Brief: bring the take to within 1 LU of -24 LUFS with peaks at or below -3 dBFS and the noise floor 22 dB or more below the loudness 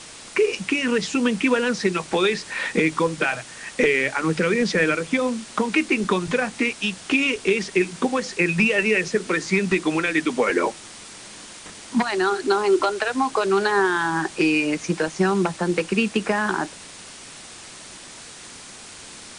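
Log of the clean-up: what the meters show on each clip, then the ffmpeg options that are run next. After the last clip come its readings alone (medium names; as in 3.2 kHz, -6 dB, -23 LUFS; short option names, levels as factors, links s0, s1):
noise floor -41 dBFS; noise floor target -44 dBFS; loudness -22.0 LUFS; peak level -6.5 dBFS; loudness target -24.0 LUFS
-> -af "afftdn=nr=6:nf=-41"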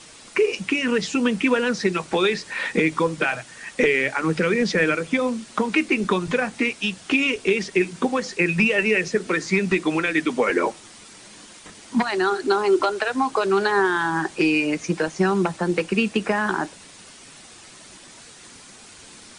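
noise floor -46 dBFS; loudness -22.0 LUFS; peak level -6.5 dBFS; loudness target -24.0 LUFS
-> -af "volume=0.794"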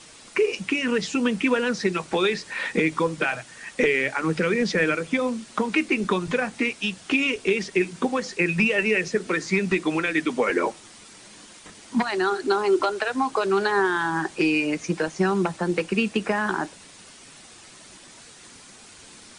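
loudness -24.0 LUFS; peak level -8.5 dBFS; noise floor -48 dBFS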